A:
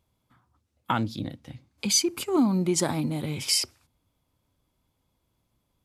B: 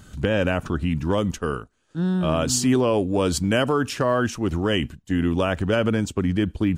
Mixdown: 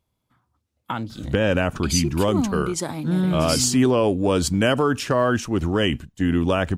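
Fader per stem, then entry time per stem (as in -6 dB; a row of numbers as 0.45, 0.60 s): -2.0, +1.5 dB; 0.00, 1.10 s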